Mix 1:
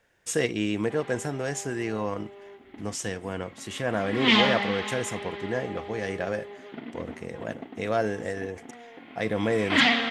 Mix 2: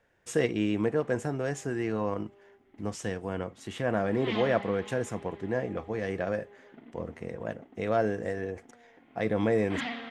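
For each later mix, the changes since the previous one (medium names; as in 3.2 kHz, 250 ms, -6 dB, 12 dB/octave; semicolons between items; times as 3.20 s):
background -11.5 dB; master: add treble shelf 2.5 kHz -10 dB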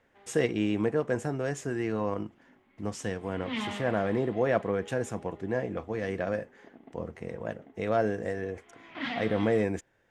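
background: entry -0.75 s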